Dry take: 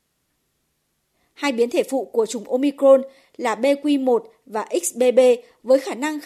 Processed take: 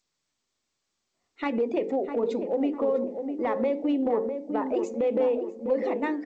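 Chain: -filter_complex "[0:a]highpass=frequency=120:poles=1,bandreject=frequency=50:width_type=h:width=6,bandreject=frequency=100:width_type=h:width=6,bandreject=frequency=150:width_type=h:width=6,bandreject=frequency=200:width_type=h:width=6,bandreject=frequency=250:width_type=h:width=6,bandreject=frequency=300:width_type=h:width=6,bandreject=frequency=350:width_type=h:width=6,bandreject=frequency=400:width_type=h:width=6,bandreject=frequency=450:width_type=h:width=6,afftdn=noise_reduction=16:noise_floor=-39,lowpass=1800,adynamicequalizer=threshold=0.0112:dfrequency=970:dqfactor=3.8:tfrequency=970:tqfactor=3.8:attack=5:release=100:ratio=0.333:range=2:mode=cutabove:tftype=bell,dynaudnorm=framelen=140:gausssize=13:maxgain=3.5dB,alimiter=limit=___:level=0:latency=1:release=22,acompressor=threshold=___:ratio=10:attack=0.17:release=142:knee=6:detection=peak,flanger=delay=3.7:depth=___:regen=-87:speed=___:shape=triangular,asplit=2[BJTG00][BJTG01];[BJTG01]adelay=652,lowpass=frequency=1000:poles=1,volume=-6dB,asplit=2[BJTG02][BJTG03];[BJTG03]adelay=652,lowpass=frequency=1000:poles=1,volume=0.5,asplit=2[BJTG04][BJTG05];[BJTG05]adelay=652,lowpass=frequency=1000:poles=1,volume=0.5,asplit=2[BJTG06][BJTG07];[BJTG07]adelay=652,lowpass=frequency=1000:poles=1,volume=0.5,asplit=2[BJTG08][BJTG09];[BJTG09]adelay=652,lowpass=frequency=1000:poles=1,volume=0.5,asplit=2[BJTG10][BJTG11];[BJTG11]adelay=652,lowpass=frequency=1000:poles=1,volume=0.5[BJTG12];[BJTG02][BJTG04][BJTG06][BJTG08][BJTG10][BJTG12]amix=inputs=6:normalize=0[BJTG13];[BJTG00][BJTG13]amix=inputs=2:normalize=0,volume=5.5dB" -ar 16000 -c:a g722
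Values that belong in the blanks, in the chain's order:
-9dB, -21dB, 6.7, 0.7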